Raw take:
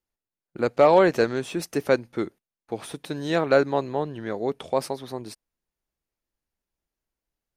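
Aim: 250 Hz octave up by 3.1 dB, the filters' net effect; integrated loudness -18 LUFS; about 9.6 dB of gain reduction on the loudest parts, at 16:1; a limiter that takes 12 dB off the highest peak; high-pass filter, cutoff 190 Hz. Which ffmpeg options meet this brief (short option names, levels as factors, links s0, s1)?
-af "highpass=190,equalizer=f=250:t=o:g=5.5,acompressor=threshold=0.1:ratio=16,volume=5.96,alimiter=limit=0.473:level=0:latency=1"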